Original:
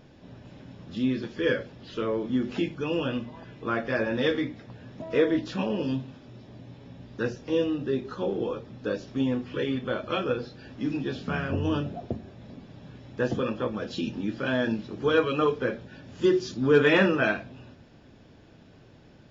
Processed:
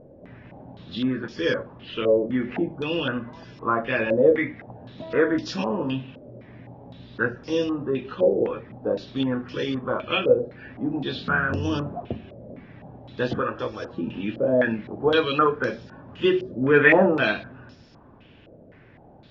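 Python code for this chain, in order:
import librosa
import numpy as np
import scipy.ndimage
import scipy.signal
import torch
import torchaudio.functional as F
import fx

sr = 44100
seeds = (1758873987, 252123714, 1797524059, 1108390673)

y = fx.peak_eq(x, sr, hz=200.0, db=-13.5, octaves=0.55, at=(13.41, 13.93))
y = fx.filter_held_lowpass(y, sr, hz=3.9, low_hz=560.0, high_hz=5400.0)
y = y * librosa.db_to_amplitude(1.0)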